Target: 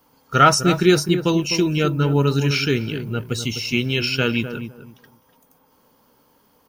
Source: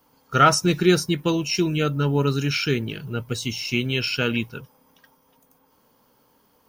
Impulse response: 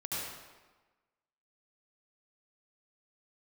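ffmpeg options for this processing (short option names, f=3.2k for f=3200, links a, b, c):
-filter_complex "[0:a]asplit=2[a][b];[b]adelay=253,lowpass=f=920:p=1,volume=-8.5dB,asplit=2[c][d];[d]adelay=253,lowpass=f=920:p=1,volume=0.22,asplit=2[e][f];[f]adelay=253,lowpass=f=920:p=1,volume=0.22[g];[a][c][e][g]amix=inputs=4:normalize=0,volume=2.5dB"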